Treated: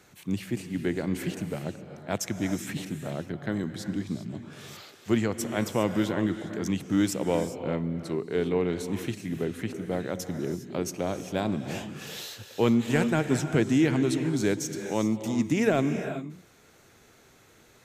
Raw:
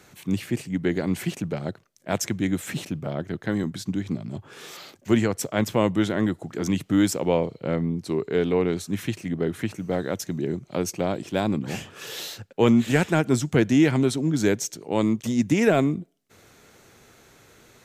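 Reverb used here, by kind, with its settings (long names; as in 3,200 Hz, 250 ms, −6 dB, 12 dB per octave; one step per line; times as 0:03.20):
reverb whose tail is shaped and stops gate 430 ms rising, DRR 8 dB
level −4.5 dB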